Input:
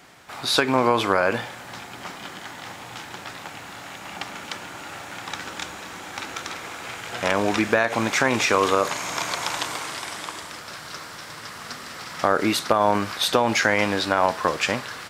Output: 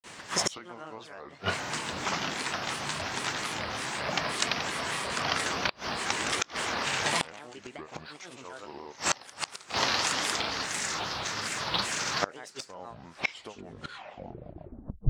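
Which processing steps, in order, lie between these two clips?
turntable brake at the end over 2.55 s
high shelf with overshoot 7,800 Hz −8 dB, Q 3
granular cloud 170 ms, grains 15 per second, pitch spread up and down by 7 semitones
gate with flip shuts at −16 dBFS, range −28 dB
level +6 dB

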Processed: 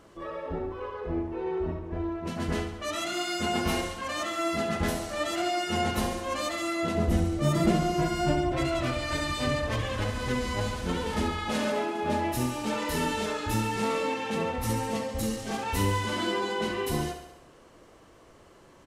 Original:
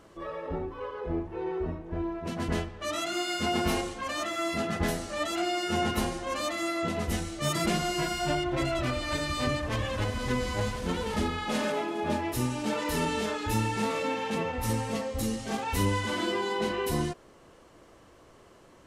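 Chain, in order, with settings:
0:06.95–0:08.52: tilt shelving filter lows +6.5 dB, about 920 Hz
repeating echo 69 ms, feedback 59%, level −9 dB

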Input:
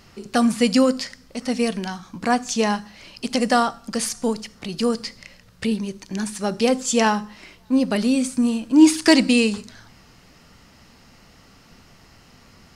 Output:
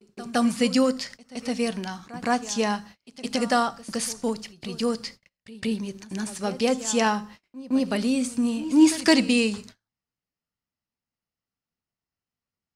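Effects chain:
parametric band 90 Hz +6.5 dB 2.3 octaves
noise gate −37 dBFS, range −38 dB
low-shelf EQ 220 Hz −7.5 dB
echo ahead of the sound 165 ms −17 dB
level −3.5 dB

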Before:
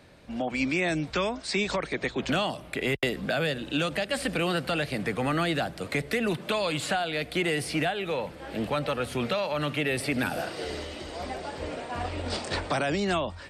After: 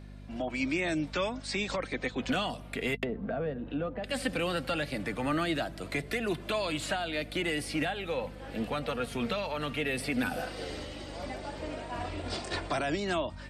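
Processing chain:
0:02.96–0:04.04: treble cut that deepens with the level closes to 930 Hz, closed at −28 dBFS
flanger 0.16 Hz, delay 2.8 ms, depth 1.7 ms, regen +48%
hum with harmonics 50 Hz, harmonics 5, −47 dBFS −4 dB per octave

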